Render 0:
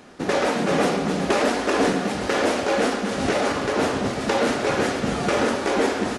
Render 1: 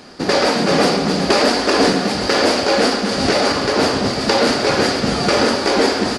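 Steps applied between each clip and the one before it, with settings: bell 4700 Hz +14.5 dB 0.3 oct; gain +5.5 dB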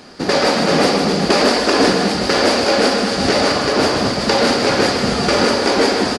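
echo 0.155 s -6.5 dB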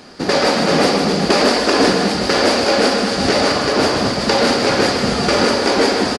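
speakerphone echo 0.21 s, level -24 dB

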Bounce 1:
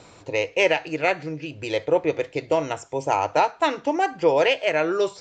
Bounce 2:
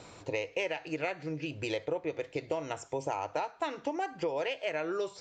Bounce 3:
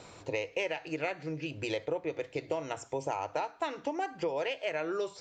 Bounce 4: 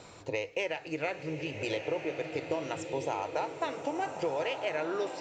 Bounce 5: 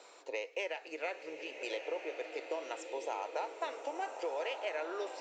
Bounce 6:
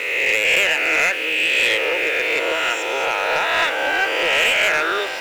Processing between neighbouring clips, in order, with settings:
compressor, threshold -28 dBFS, peak gain reduction 14 dB; gain -2.5 dB
notches 60/120/180/240/300 Hz
bloom reverb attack 1.34 s, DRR 5.5 dB
HPF 390 Hz 24 dB/oct; gain -4.5 dB
spectral swells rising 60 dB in 1.66 s; band shelf 2200 Hz +14 dB; sample leveller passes 3

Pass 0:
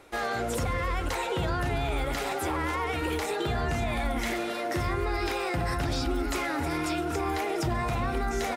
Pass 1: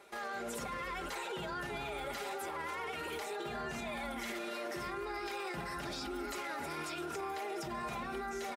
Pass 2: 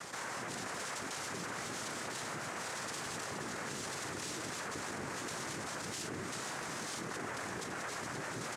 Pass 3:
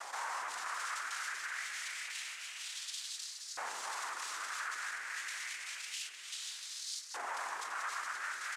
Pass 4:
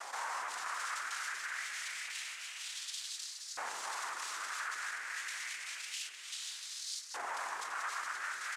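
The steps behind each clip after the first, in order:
HPF 280 Hz 6 dB/oct; comb 5 ms, depth 64%; limiter -27 dBFS, peak gain reduction 9.5 dB; gain -5 dB
noise vocoder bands 3; high shelf 5800 Hz +7 dB; fast leveller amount 70%; gain -3.5 dB
LFO high-pass saw up 0.28 Hz 790–4800 Hz; gain -1.5 dB
AM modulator 280 Hz, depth 15%; gain +1.5 dB

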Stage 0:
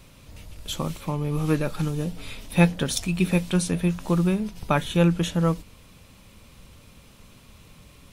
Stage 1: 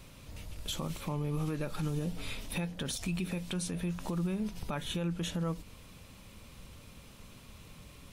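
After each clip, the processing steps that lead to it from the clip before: compressor 4:1, threshold -26 dBFS, peak gain reduction 12.5 dB; limiter -23.5 dBFS, peak gain reduction 10.5 dB; gain -2 dB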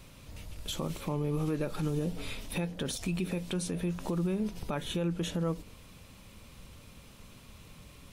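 dynamic EQ 400 Hz, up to +6 dB, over -50 dBFS, Q 1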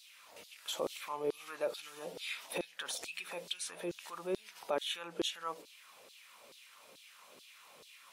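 LFO high-pass saw down 2.3 Hz 380–4300 Hz; gain -2.5 dB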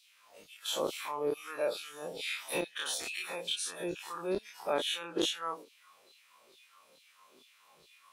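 spectral dilation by 60 ms; spectral noise reduction 10 dB

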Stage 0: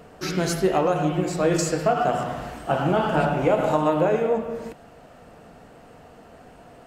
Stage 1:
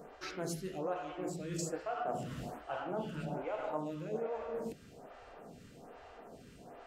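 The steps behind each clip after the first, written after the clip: reverse; compressor 5:1, threshold -30 dBFS, peak gain reduction 14 dB; reverse; buzz 400 Hz, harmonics 19, -58 dBFS -5 dB/oct; photocell phaser 1.2 Hz; gain -3.5 dB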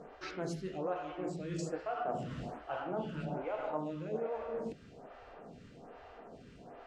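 air absorption 100 m; gain +1 dB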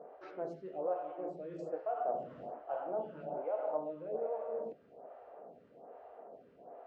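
band-pass 600 Hz, Q 2.2; gain +3.5 dB

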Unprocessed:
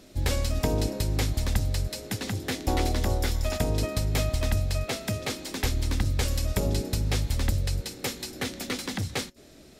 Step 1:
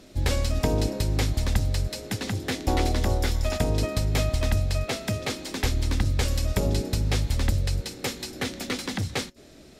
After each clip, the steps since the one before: high shelf 11000 Hz -7.5 dB; gain +2 dB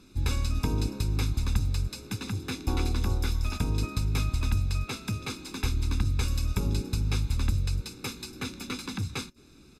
comb 0.8 ms, depth 84%; gain -7.5 dB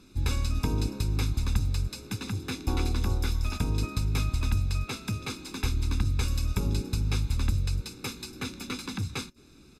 nothing audible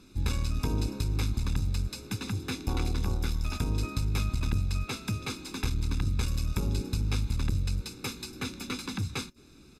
core saturation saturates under 130 Hz

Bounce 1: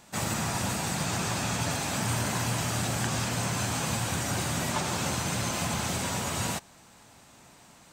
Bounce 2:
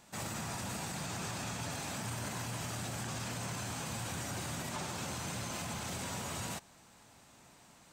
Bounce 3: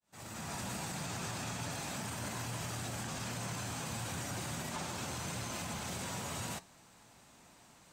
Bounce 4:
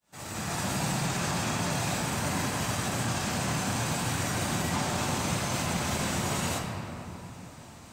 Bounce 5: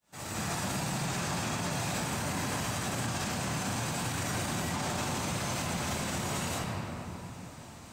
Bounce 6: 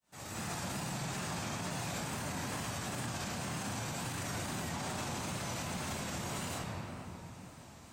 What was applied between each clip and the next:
limiter -25 dBFS, peak gain reduction 8.5 dB; gain -5.5 dB
opening faded in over 0.56 s; flange 0.38 Hz, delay 1.7 ms, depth 6.7 ms, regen -79%; gain +4 dB
shoebox room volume 140 m³, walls hard, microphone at 0.41 m; gain +7.5 dB
limiter -24 dBFS, peak gain reduction 6.5 dB
wow and flutter 73 cents; gain -5.5 dB

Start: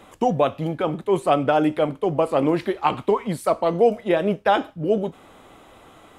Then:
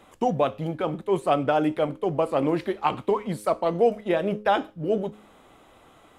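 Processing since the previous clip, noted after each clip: de-hum 105 Hz, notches 5; in parallel at -10.5 dB: backlash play -29.5 dBFS; on the sum: gain -5.5 dB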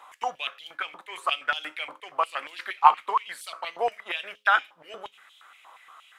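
stepped high-pass 8.5 Hz 980–3300 Hz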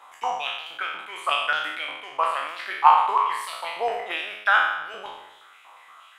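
spectral trails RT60 0.92 s; gain -1 dB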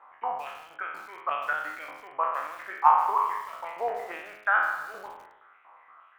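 LPF 1900 Hz 24 dB/oct; lo-fi delay 0.157 s, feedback 35%, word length 6-bit, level -14 dB; gain -4 dB

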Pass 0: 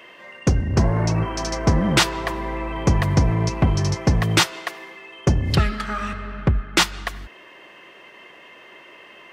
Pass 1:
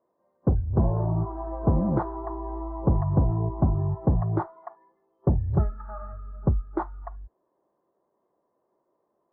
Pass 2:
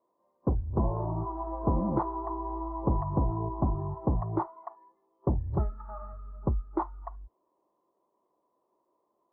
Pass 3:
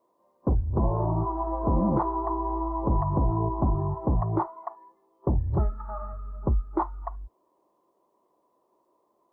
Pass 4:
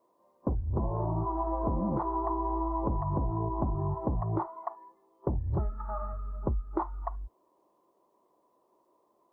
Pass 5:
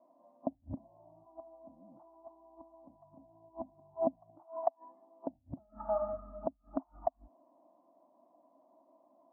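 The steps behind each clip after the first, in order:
inverse Chebyshev low-pass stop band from 2500 Hz, stop band 50 dB; spectral noise reduction 19 dB; gain -4 dB
thirty-one-band EQ 100 Hz -6 dB, 160 Hz -5 dB, 315 Hz +3 dB, 1000 Hz +8 dB, 1600 Hz -8 dB; gain -4 dB
limiter -21 dBFS, peak gain reduction 7 dB; gain +6 dB
compressor 10:1, threshold -26 dBFS, peak gain reduction 8 dB
flipped gate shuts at -23 dBFS, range -31 dB; double band-pass 420 Hz, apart 1.3 oct; gain +13 dB

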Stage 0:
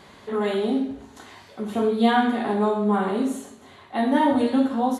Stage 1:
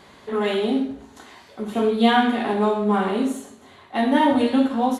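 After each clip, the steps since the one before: notches 50/100/150/200 Hz; dynamic EQ 2700 Hz, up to +6 dB, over -46 dBFS, Q 1.8; in parallel at -12 dB: crossover distortion -33.5 dBFS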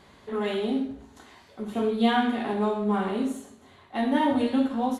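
low shelf 130 Hz +8 dB; gain -6.5 dB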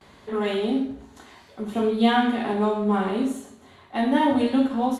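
gate with hold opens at -47 dBFS; gain +3 dB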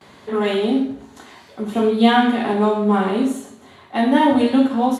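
HPF 100 Hz 12 dB/oct; gain +5.5 dB

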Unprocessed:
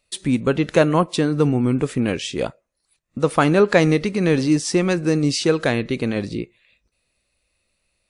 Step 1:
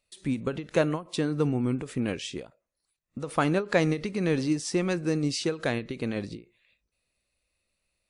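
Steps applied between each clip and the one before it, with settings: ending taper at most 200 dB/s; gain -8 dB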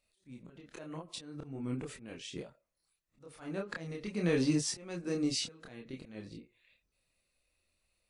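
auto swell 0.756 s; chorus voices 4, 0.37 Hz, delay 27 ms, depth 4 ms; gain +2.5 dB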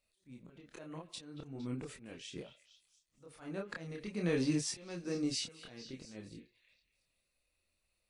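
delay with a stepping band-pass 0.23 s, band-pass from 2600 Hz, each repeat 0.7 oct, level -11 dB; gain -3 dB

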